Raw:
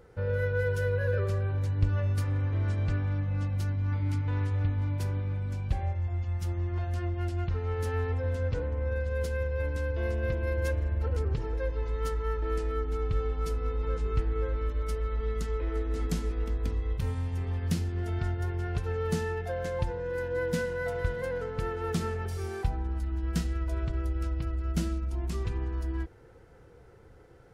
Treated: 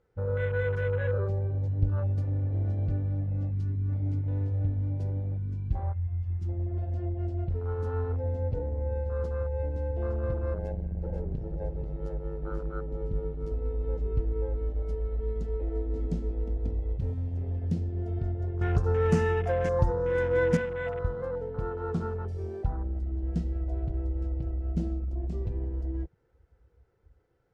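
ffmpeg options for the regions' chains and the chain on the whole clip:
-filter_complex "[0:a]asettb=1/sr,asplit=3[a][b][c];[a]atrim=end=10.544[d];[b]atrim=start=10.54:end=13.52,asetpts=PTS-STARTPTS,afade=t=in:d=0.004:c=qsin,afade=t=out:st=2.976:d=0.004:c=qsin,tremolo=f=100:d=0.857,aecho=1:1:487:0.473,atrim=end_sample=131418[e];[c]atrim=start=13.516[f];[d][e]acrossfade=d=0.004:c1=hsin:c2=qsin[g];[g][f]acrossfade=d=0.004:c1=qsin:c2=hsin,asettb=1/sr,asplit=3[h][i][j];[h]atrim=end=18.614[k];[i]atrim=start=18.61:end=20.57,asetpts=PTS-STARTPTS,afade=t=in:d=0.004:c=qsin,afade=t=out:st=1.956:d=0.004:c=qsin,highshelf=f=4.5k:t=q:w=1.5:g=9,acontrast=57[l];[j]atrim=start=20.566[m];[k][l]acrossfade=d=0.004:c1=hsin:c2=qsin[n];[n][m]acrossfade=d=0.004:c1=qsin:c2=hsin,lowpass=7k,afwtdn=0.0158"

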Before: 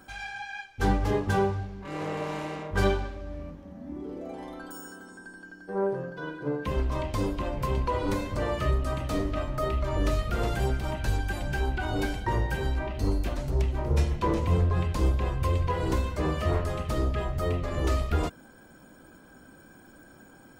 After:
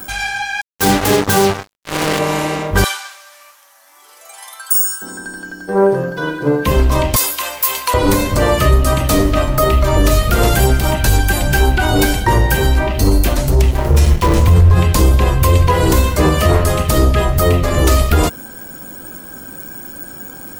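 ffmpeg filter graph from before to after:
-filter_complex "[0:a]asettb=1/sr,asplit=3[a][b][c];[a]atrim=end=0.614[d];[b]atrim=start=0.61:end=2.19,asetpts=PTS-STARTPTS,afade=t=in:d=0.004:c=qsin,afade=t=out:st=1.576:d=0.004:c=qsin,highpass=130,acrusher=bits=4:mix=0:aa=0.5[e];[c]atrim=start=2.186[f];[d][e]acrossfade=d=0.004:c1=hsin:c2=qsin[g];[g][f]acrossfade=d=0.004:c1=qsin:c2=hsin,asettb=1/sr,asplit=3[h][i][j];[h]atrim=end=2.844[k];[i]atrim=start=2.84:end=5.02,asetpts=PTS-STARTPTS,afade=t=in:d=0.004:c=qsin,afade=t=out:st=2.176:d=0.004:c=qsin,highpass=f=1k:w=0.5412,highpass=f=1k:w=1.3066,equalizer=f=9.9k:t=o:w=1.6:g=11,flanger=delay=6:depth=6.1:regen=-85:speed=1.1:shape=sinusoidal[l];[j]atrim=start=5.016[m];[k][l]acrossfade=d=0.004:c1=hsin:c2=qsin[n];[n][m]acrossfade=d=0.004:c1=qsin:c2=hsin,asettb=1/sr,asplit=3[o][p][q];[o]atrim=end=7.164[r];[p]atrim=start=7.16:end=7.94,asetpts=PTS-STARTPTS,afade=t=in:d=0.004:c=qsin,afade=t=out:st=0.776:d=0.004:c=qsin,highpass=1.1k,aemphasis=mode=production:type=50kf,aeval=exprs='val(0)+0.000631*(sin(2*PI*60*n/s)+sin(2*PI*2*60*n/s)/2+sin(2*PI*3*60*n/s)/3+sin(2*PI*4*60*n/s)/4+sin(2*PI*5*60*n/s)/5)':c=same[s];[q]atrim=start=7.936[t];[r][s]acrossfade=d=0.004:c1=hsin:c2=qsin[u];[u][t]acrossfade=d=0.004:c1=qsin:c2=hsin,asettb=1/sr,asplit=3[v][w][x];[v]atrim=end=13.714[y];[w]atrim=start=13.71:end=14.75,asetpts=PTS-STARTPTS,afade=t=in:d=0.004:c=qsin,afade=t=out:st=1.036:d=0.004:c=qsin,asubboost=boost=7:cutoff=150,aeval=exprs='sgn(val(0))*max(abs(val(0))-0.0168,0)':c=same[z];[x]atrim=start=14.746[aa];[y][z]acrossfade=d=0.004:c1=hsin:c2=qsin[ab];[ab][aa]acrossfade=d=0.004:c1=qsin:c2=hsin,aemphasis=mode=production:type=50fm,alimiter=level_in=17dB:limit=-1dB:release=50:level=0:latency=1,volume=-1dB"

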